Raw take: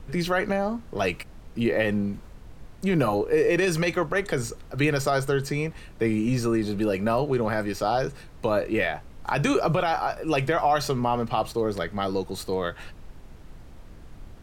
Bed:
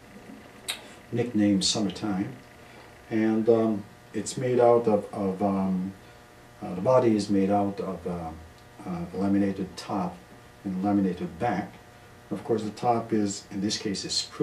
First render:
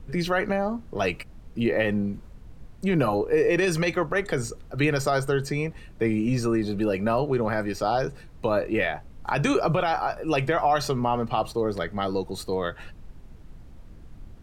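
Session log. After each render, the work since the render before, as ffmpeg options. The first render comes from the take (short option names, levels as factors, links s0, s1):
-af "afftdn=nr=6:nf=-45"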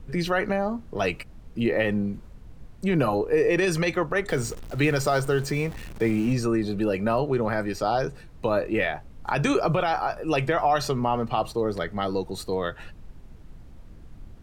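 -filter_complex "[0:a]asettb=1/sr,asplit=3[s0][s1][s2];[s0]atrim=end=4.284[s3];[s1]atrim=start=4.28:end=6.33,asetpts=PTS-STARTPTS,afade=t=in:d=0.004:c=qsin,afade=t=out:st=2.046:d=0.004:c=qsin,aeval=exprs='val(0)+0.5*0.015*sgn(val(0))':c=same[s4];[s2]atrim=start=6.326[s5];[s3][s4]acrossfade=d=0.004:c1=hsin:c2=qsin[s6];[s6][s5]acrossfade=d=0.004:c1=qsin:c2=hsin"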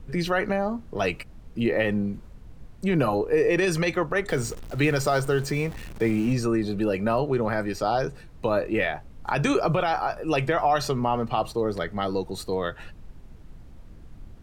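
-af anull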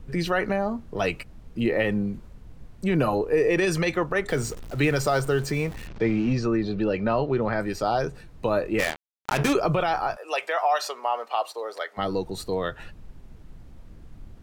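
-filter_complex "[0:a]asettb=1/sr,asplit=3[s0][s1][s2];[s0]atrim=end=5.874[s3];[s1]atrim=start=5.87:end=7.6,asetpts=PTS-STARTPTS,afade=t=in:d=0.004:c=qsin,afade=t=out:st=1.726:d=0.004:c=qsin,lowpass=f=5500:w=0.5412,lowpass=f=5500:w=1.3066[s4];[s2]atrim=start=7.596[s5];[s3][s4]acrossfade=d=0.004:c1=hsin:c2=qsin[s6];[s6][s5]acrossfade=d=0.004:c1=qsin:c2=hsin,asplit=3[s7][s8][s9];[s7]afade=t=out:st=8.78:d=0.02[s10];[s8]acrusher=bits=3:mix=0:aa=0.5,afade=t=in:st=8.78:d=0.02,afade=t=out:st=9.52:d=0.02[s11];[s9]afade=t=in:st=9.52:d=0.02[s12];[s10][s11][s12]amix=inputs=3:normalize=0,asplit=3[s13][s14][s15];[s13]afade=t=out:st=10.15:d=0.02[s16];[s14]highpass=f=550:w=0.5412,highpass=f=550:w=1.3066,afade=t=in:st=10.15:d=0.02,afade=t=out:st=11.97:d=0.02[s17];[s15]afade=t=in:st=11.97:d=0.02[s18];[s16][s17][s18]amix=inputs=3:normalize=0"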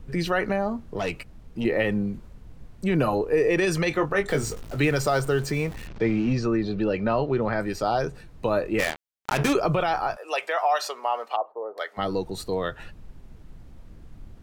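-filter_complex "[0:a]asettb=1/sr,asplit=3[s0][s1][s2];[s0]atrim=end=0.994[s3];[s1]atrim=start=0.99:end=1.65,asetpts=PTS-STARTPTS,afade=t=in:d=0.004:c=qsin,afade=t=out:st=0.656:d=0.004:c=qsin,aeval=exprs='(tanh(11.2*val(0)+0.3)-tanh(0.3))/11.2':c=same[s4];[s2]atrim=start=1.646[s5];[s3][s4]acrossfade=d=0.004:c1=hsin:c2=qsin[s6];[s6][s5]acrossfade=d=0.004:c1=qsin:c2=hsin,asettb=1/sr,asplit=3[s7][s8][s9];[s7]atrim=end=3.894[s10];[s8]atrim=start=3.89:end=4.78,asetpts=PTS-STARTPTS,afade=t=in:d=0.004:c=qsin,afade=t=out:st=0.886:d=0.004:c=qsin,asplit=2[s11][s12];[s12]adelay=20,volume=0.501[s13];[s11][s13]amix=inputs=2:normalize=0,atrim=end_sample=39249[s14];[s9]atrim=start=4.776[s15];[s10][s14]acrossfade=d=0.004:c1=hsin:c2=qsin[s16];[s16][s15]acrossfade=d=0.004:c1=qsin:c2=hsin,asettb=1/sr,asplit=3[s17][s18][s19];[s17]atrim=end=11.364[s20];[s18]atrim=start=11.36:end=11.78,asetpts=PTS-STARTPTS,afade=t=in:d=0.004:c=qsin,afade=t=out:st=0.416:d=0.004:c=qsin,lowpass=f=1000:w=0.5412,lowpass=f=1000:w=1.3066[s21];[s19]atrim=start=11.776[s22];[s20][s21]acrossfade=d=0.004:c1=hsin:c2=qsin[s23];[s23][s22]acrossfade=d=0.004:c1=qsin:c2=hsin"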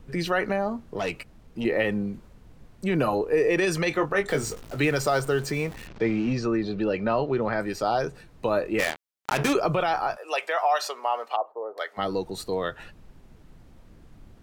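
-af "lowshelf=f=130:g=-7.5"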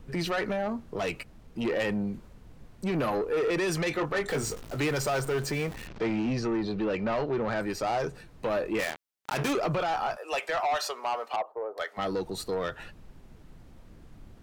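-af "asoftclip=type=tanh:threshold=0.0668"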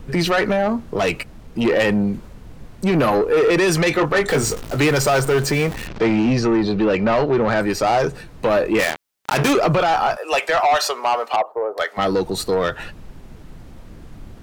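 -af "volume=3.76"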